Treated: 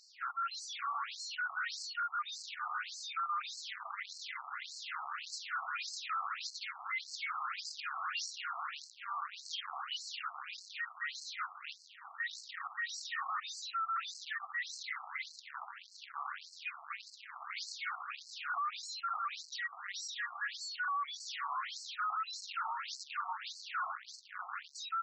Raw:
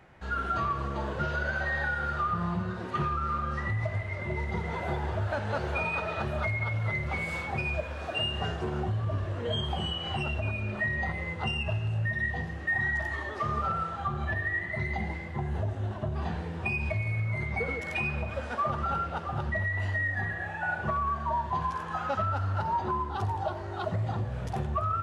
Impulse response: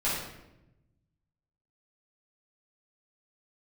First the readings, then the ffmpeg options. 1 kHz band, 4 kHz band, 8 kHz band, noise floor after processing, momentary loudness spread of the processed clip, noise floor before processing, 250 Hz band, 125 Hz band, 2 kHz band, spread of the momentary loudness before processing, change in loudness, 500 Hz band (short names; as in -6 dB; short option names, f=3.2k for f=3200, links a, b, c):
-7.0 dB, -2.5 dB, n/a, -57 dBFS, 7 LU, -38 dBFS, under -40 dB, under -40 dB, -8.5 dB, 4 LU, -9.0 dB, -31.0 dB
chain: -filter_complex "[0:a]highpass=f=69:p=1,bandreject=f=50:t=h:w=6,bandreject=f=100:t=h:w=6,bandreject=f=150:t=h:w=6,bandreject=f=200:t=h:w=6,asplit=2[a][b];[b]aeval=exprs='(mod(16.8*val(0)+1,2)-1)/16.8':c=same,volume=-4dB[c];[a][c]amix=inputs=2:normalize=0,equalizer=f=640:t=o:w=1.8:g=-11.5,acompressor=threshold=-31dB:ratio=6,superequalizer=9b=0.708:10b=3.98:12b=0.562:13b=0.398:14b=2,aeval=exprs='(tanh(200*val(0)+0.15)-tanh(0.15))/200':c=same,asplit=2[d][e];[e]adelay=1102,lowpass=f=1.7k:p=1,volume=-22.5dB,asplit=2[f][g];[g]adelay=1102,lowpass=f=1.7k:p=1,volume=0.2[h];[d][f][h]amix=inputs=3:normalize=0,afftfilt=real='re*between(b*sr/1024,930*pow(5900/930,0.5+0.5*sin(2*PI*1.7*pts/sr))/1.41,930*pow(5900/930,0.5+0.5*sin(2*PI*1.7*pts/sr))*1.41)':imag='im*between(b*sr/1024,930*pow(5900/930,0.5+0.5*sin(2*PI*1.7*pts/sr))/1.41,930*pow(5900/930,0.5+0.5*sin(2*PI*1.7*pts/sr))*1.41)':win_size=1024:overlap=0.75,volume=13dB"